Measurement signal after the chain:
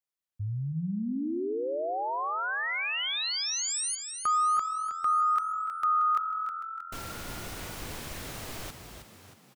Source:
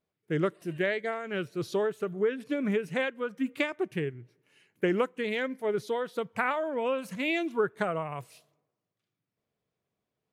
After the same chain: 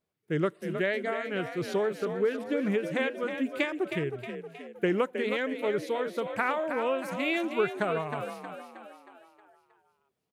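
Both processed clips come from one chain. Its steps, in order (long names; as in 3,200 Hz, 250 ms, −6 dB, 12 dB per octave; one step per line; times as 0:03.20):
echo with shifted repeats 315 ms, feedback 50%, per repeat +43 Hz, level −8 dB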